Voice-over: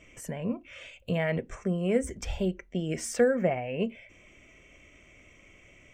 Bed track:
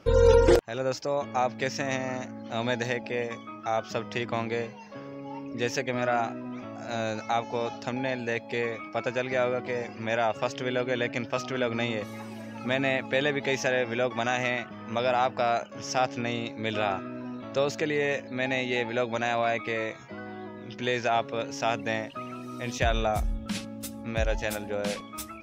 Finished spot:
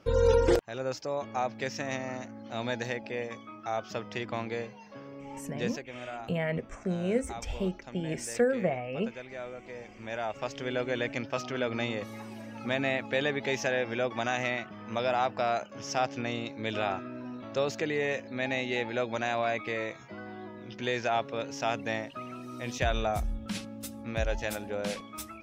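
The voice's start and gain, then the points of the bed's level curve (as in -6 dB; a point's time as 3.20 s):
5.20 s, -2.5 dB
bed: 5.61 s -4.5 dB
5.85 s -14 dB
9.52 s -14 dB
10.79 s -3 dB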